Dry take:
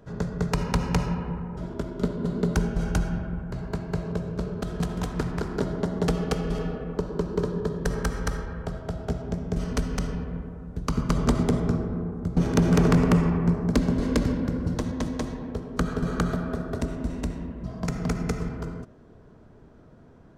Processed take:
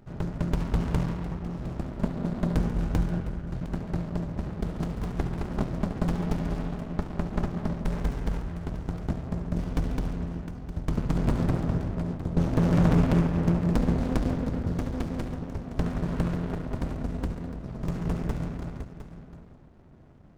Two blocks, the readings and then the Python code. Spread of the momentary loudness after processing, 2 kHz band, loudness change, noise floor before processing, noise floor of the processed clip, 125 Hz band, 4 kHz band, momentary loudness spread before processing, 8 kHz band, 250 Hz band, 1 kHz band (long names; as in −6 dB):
10 LU, −5.5 dB, −2.0 dB, −51 dBFS, −48 dBFS, −0.5 dB, −7.0 dB, 10 LU, below −10 dB, −2.0 dB, −3.5 dB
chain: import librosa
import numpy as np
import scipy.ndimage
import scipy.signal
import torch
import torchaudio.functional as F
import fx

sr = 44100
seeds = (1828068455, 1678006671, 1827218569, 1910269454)

y = fx.hum_notches(x, sr, base_hz=60, count=4)
y = fx.echo_multitap(y, sr, ms=(70, 139, 708), db=(-13.5, -14.5, -12.5))
y = fx.running_max(y, sr, window=65)